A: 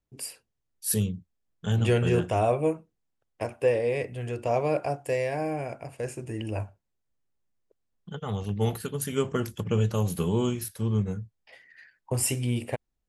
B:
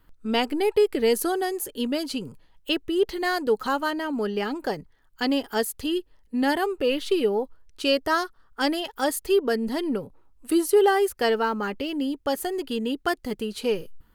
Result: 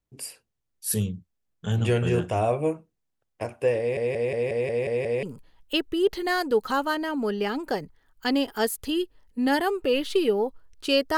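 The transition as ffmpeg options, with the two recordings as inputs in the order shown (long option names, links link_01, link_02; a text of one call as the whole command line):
ffmpeg -i cue0.wav -i cue1.wav -filter_complex "[0:a]apad=whole_dur=11.17,atrim=end=11.17,asplit=8[link_01][link_02][link_03][link_04][link_05][link_06][link_07][link_08];[link_01]atrim=end=3.972[link_09];[link_02]atrim=start=3.788:end=3.972[link_10];[link_03]atrim=start=3.788:end=3.972[link_11];[link_04]atrim=start=3.788:end=3.972[link_12];[link_05]atrim=start=3.788:end=3.972[link_13];[link_06]atrim=start=3.788:end=3.972[link_14];[link_07]atrim=start=3.788:end=3.972[link_15];[link_08]atrim=start=3.788:end=3.972[link_16];[1:a]atrim=start=2.188:end=8.13[link_17];[link_09][link_10]acrossfade=duration=0.004:curve1=hsin:curve2=hsin[link_18];[link_18][link_11]acrossfade=duration=0.004:curve1=hsin:curve2=hsin[link_19];[link_19][link_12]acrossfade=duration=0.004:curve1=hsin:curve2=hsin[link_20];[link_20][link_13]acrossfade=duration=0.004:curve1=hsin:curve2=hsin[link_21];[link_21][link_14]acrossfade=duration=0.004:curve1=hsin:curve2=hsin[link_22];[link_22][link_15]acrossfade=duration=0.004:curve1=hsin:curve2=hsin[link_23];[link_23][link_16]acrossfade=duration=0.004:curve1=hsin:curve2=hsin[link_24];[link_24][link_17]acrossfade=duration=0.004:curve1=hsin:curve2=hsin" out.wav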